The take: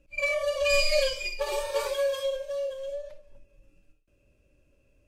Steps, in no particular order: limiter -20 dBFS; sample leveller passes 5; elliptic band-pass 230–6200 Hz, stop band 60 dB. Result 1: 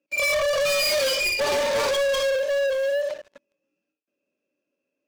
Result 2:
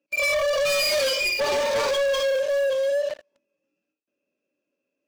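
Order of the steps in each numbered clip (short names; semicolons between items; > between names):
elliptic band-pass > limiter > sample leveller; elliptic band-pass > sample leveller > limiter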